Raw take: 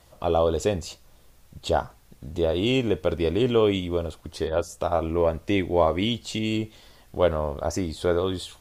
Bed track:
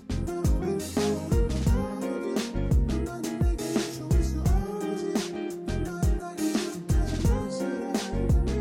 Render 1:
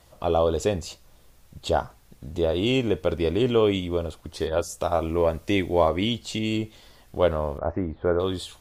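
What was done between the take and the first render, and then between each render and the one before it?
0:04.40–0:05.89: high-shelf EQ 4,000 Hz +6 dB
0:07.58–0:08.20: low-pass filter 1,800 Hz 24 dB per octave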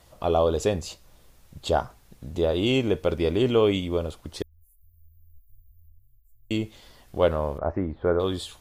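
0:04.42–0:06.51: inverse Chebyshev band-stop filter 240–4,300 Hz, stop band 80 dB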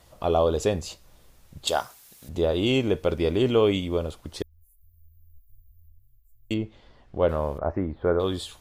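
0:01.67–0:02.29: spectral tilt +4 dB per octave
0:06.54–0:07.29: head-to-tape spacing loss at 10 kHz 25 dB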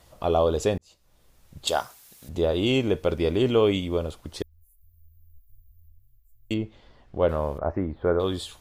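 0:00.78–0:01.63: fade in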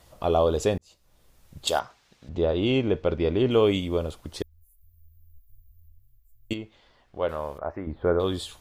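0:01.79–0:03.51: high-frequency loss of the air 160 metres
0:06.53–0:07.87: low-shelf EQ 480 Hz −11 dB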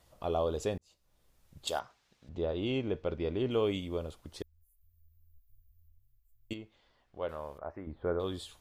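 level −9.5 dB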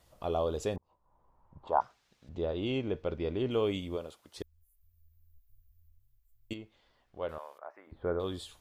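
0:00.76–0:01.81: low-pass with resonance 970 Hz, resonance Q 7.3
0:03.95–0:04.36: high-pass filter 230 Hz → 970 Hz 6 dB per octave
0:07.38–0:07.92: high-pass filter 760 Hz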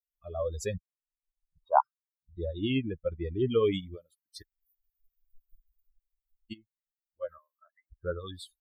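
spectral dynamics exaggerated over time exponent 3
automatic gain control gain up to 8.5 dB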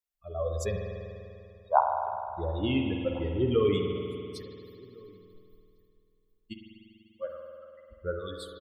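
slap from a distant wall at 240 metres, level −25 dB
spring reverb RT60 2.6 s, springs 49 ms, chirp 30 ms, DRR 2.5 dB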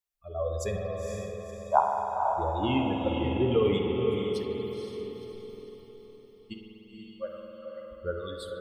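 on a send: feedback delay with all-pass diffusion 499 ms, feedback 44%, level −4 dB
on the sum: dense smooth reverb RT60 0.54 s, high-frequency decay 1×, DRR 13 dB

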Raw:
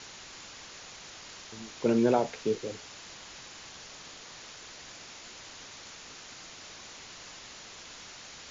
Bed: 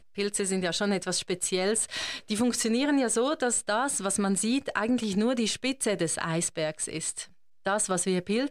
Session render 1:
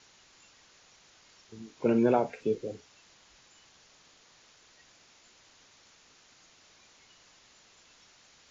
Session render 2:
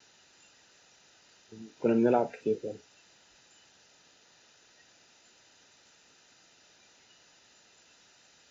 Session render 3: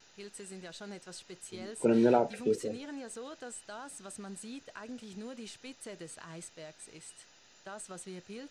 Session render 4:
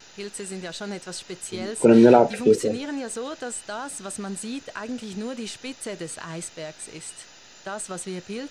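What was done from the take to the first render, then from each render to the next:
noise reduction from a noise print 13 dB
pitch vibrato 0.39 Hz 11 cents; notch comb filter 1,100 Hz
mix in bed −18 dB
level +12 dB; brickwall limiter −3 dBFS, peak gain reduction 2 dB

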